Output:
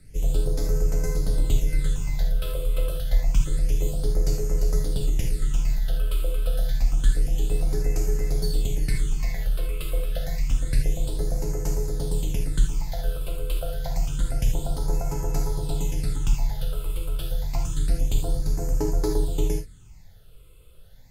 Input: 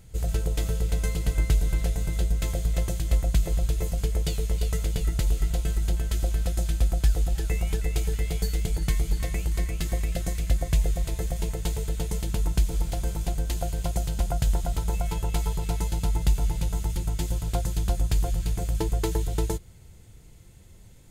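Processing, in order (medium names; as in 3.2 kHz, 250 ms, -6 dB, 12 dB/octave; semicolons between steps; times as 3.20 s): phase shifter stages 8, 0.28 Hz, lowest notch 240–3400 Hz; gated-style reverb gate 100 ms flat, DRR 1.5 dB; frequency shift -19 Hz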